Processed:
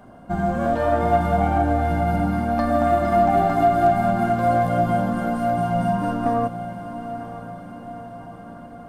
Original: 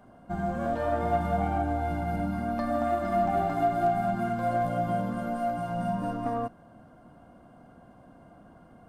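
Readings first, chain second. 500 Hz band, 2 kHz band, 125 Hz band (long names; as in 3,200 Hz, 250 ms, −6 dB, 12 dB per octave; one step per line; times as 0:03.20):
+8.5 dB, +8.5 dB, +9.0 dB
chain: feedback delay with all-pass diffusion 930 ms, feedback 57%, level −12 dB
level +8 dB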